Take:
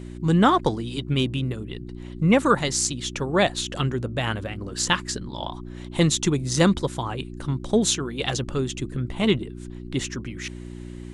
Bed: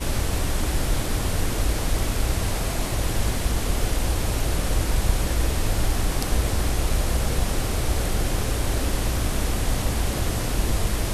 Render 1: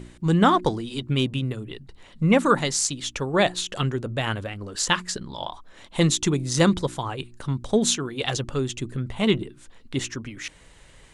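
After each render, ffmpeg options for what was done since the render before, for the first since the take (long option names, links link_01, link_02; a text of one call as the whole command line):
ffmpeg -i in.wav -af "bandreject=frequency=60:width_type=h:width=4,bandreject=frequency=120:width_type=h:width=4,bandreject=frequency=180:width_type=h:width=4,bandreject=frequency=240:width_type=h:width=4,bandreject=frequency=300:width_type=h:width=4,bandreject=frequency=360:width_type=h:width=4" out.wav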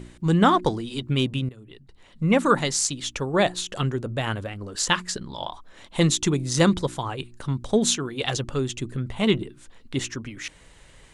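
ffmpeg -i in.wav -filter_complex "[0:a]asettb=1/sr,asplit=3[link_01][link_02][link_03];[link_01]atrim=end=3.174[link_04];[link_02]atrim=start=3.17:end=4.78,asetpts=PTS-STARTPTS,afade=type=in:duration=0.004:curve=qsin,afade=type=out:start_time=1.606:duration=0.004:curve=qsin,equalizer=frequency=2800:width_type=o:width=1.8:gain=-2.5[link_05];[link_03]atrim=start=4.776[link_06];[link_04][link_05]acrossfade=duration=0.004:curve1=hsin:curve2=qsin[link_07];[link_07][link_06]acrossfade=duration=0.004:curve1=qsin:curve2=hsin,asplit=2[link_08][link_09];[link_08]atrim=end=1.49,asetpts=PTS-STARTPTS,afade=type=out:start_time=1.486:duration=0.004:curve=hsin:silence=0.158489[link_10];[link_09]atrim=start=1.49,asetpts=PTS-STARTPTS,afade=type=in:duration=1.03:silence=0.158489[link_11];[link_10][link_11]concat=n=2:v=0:a=1" out.wav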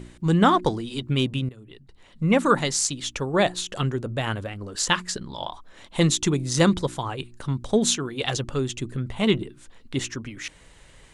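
ffmpeg -i in.wav -af anull out.wav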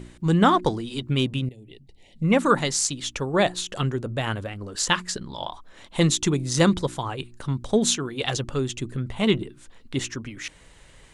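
ffmpeg -i in.wav -filter_complex "[0:a]asplit=3[link_01][link_02][link_03];[link_01]afade=type=out:start_time=1.45:duration=0.02[link_04];[link_02]asuperstop=centerf=1300:order=8:qfactor=1.2,afade=type=in:start_time=1.45:duration=0.02,afade=type=out:start_time=2.23:duration=0.02[link_05];[link_03]afade=type=in:start_time=2.23:duration=0.02[link_06];[link_04][link_05][link_06]amix=inputs=3:normalize=0" out.wav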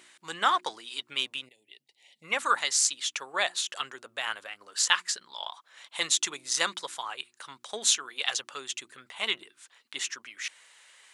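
ffmpeg -i in.wav -af "highpass=1200" out.wav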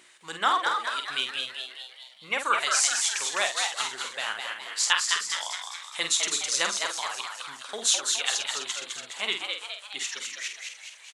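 ffmpeg -i in.wav -filter_complex "[0:a]asplit=2[link_01][link_02];[link_02]adelay=48,volume=-7dB[link_03];[link_01][link_03]amix=inputs=2:normalize=0,asplit=8[link_04][link_05][link_06][link_07][link_08][link_09][link_10][link_11];[link_05]adelay=208,afreqshift=130,volume=-4dB[link_12];[link_06]adelay=416,afreqshift=260,volume=-9.2dB[link_13];[link_07]adelay=624,afreqshift=390,volume=-14.4dB[link_14];[link_08]adelay=832,afreqshift=520,volume=-19.6dB[link_15];[link_09]adelay=1040,afreqshift=650,volume=-24.8dB[link_16];[link_10]adelay=1248,afreqshift=780,volume=-30dB[link_17];[link_11]adelay=1456,afreqshift=910,volume=-35.2dB[link_18];[link_04][link_12][link_13][link_14][link_15][link_16][link_17][link_18]amix=inputs=8:normalize=0" out.wav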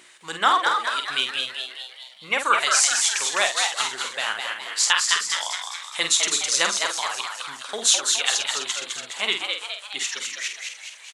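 ffmpeg -i in.wav -af "volume=5dB,alimiter=limit=-3dB:level=0:latency=1" out.wav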